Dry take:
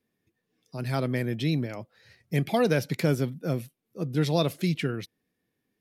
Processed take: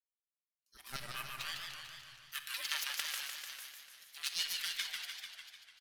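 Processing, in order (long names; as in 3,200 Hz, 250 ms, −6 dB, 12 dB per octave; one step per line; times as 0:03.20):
noise gate with hold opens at −49 dBFS
first-order pre-emphasis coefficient 0.97
harmonic generator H 3 −14 dB, 5 −24 dB, 6 −10 dB, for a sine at −13 dBFS
auto-filter high-pass saw down 5.2 Hz 600–2,400 Hz
in parallel at −11 dB: bit reduction 7 bits
on the sum: high-pass filter sweep 110 Hz → 2,800 Hz, 0:00.48–0:01.58
ring modulation 680 Hz
on a send: single-tap delay 441 ms −13.5 dB
on the sum: rectangular room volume 3,600 cubic metres, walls mixed, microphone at 1.2 metres
feedback echo with a swinging delay time 149 ms, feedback 61%, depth 168 cents, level −4.5 dB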